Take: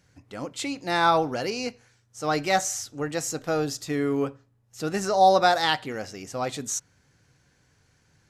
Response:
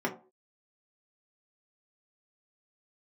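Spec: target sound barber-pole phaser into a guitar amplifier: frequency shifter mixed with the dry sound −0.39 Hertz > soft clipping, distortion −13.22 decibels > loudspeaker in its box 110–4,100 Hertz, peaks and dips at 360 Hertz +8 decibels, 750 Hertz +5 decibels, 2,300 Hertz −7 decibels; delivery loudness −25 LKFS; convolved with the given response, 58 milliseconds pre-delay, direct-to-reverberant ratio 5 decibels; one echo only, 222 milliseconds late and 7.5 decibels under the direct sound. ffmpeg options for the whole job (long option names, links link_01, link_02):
-filter_complex "[0:a]aecho=1:1:222:0.422,asplit=2[link_01][link_02];[1:a]atrim=start_sample=2205,adelay=58[link_03];[link_02][link_03]afir=irnorm=-1:irlink=0,volume=-13.5dB[link_04];[link_01][link_04]amix=inputs=2:normalize=0,asplit=2[link_05][link_06];[link_06]afreqshift=-0.39[link_07];[link_05][link_07]amix=inputs=2:normalize=1,asoftclip=threshold=-18.5dB,highpass=110,equalizer=frequency=360:width_type=q:width=4:gain=8,equalizer=frequency=750:width_type=q:width=4:gain=5,equalizer=frequency=2300:width_type=q:width=4:gain=-7,lowpass=frequency=4100:width=0.5412,lowpass=frequency=4100:width=1.3066,volume=2dB"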